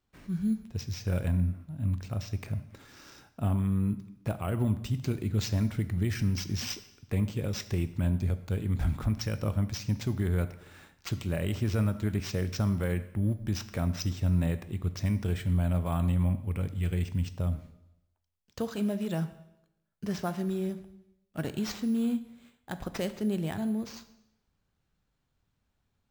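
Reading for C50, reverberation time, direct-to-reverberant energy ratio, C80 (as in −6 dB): 14.0 dB, 0.90 s, 11.0 dB, 15.5 dB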